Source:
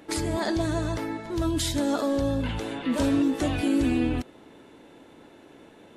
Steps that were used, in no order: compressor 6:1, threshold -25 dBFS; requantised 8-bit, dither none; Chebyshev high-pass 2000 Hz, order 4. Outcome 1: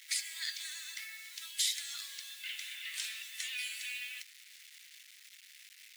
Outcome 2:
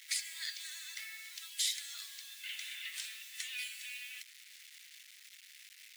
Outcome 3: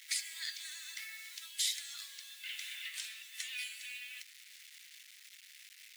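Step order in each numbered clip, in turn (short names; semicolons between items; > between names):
requantised > Chebyshev high-pass > compressor; compressor > requantised > Chebyshev high-pass; requantised > compressor > Chebyshev high-pass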